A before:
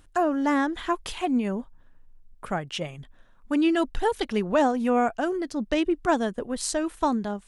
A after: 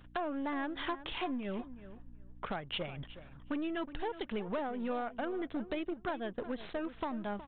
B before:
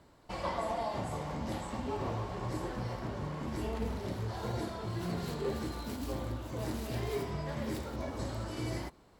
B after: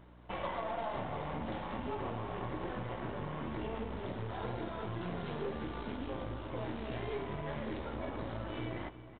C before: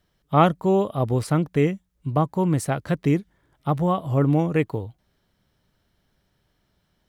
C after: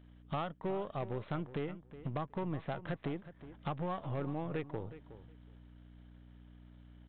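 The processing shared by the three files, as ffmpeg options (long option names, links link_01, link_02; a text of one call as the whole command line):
ffmpeg -i in.wav -filter_complex "[0:a]aeval=exprs='if(lt(val(0),0),0.447*val(0),val(0))':channel_layout=same,aeval=exprs='val(0)+0.00158*(sin(2*PI*60*n/s)+sin(2*PI*2*60*n/s)/2+sin(2*PI*3*60*n/s)/3+sin(2*PI*4*60*n/s)/4+sin(2*PI*5*60*n/s)/5)':channel_layout=same,acompressor=threshold=-35dB:ratio=16,aresample=8000,asoftclip=type=hard:threshold=-32dB,aresample=44100,lowshelf=frequency=190:gain=-5.5,asplit=2[link_01][link_02];[link_02]adelay=367,lowpass=frequency=3000:poles=1,volume=-14dB,asplit=2[link_03][link_04];[link_04]adelay=367,lowpass=frequency=3000:poles=1,volume=0.16[link_05];[link_01][link_03][link_05]amix=inputs=3:normalize=0,volume=4dB" out.wav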